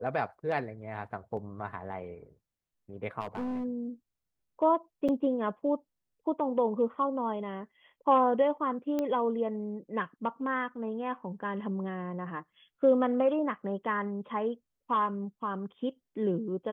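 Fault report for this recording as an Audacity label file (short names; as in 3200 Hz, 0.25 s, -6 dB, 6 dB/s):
1.370000	1.370000	gap 2.6 ms
3.210000	3.650000	clipped -31.5 dBFS
5.080000	5.090000	gap 6.5 ms
8.990000	8.990000	pop -19 dBFS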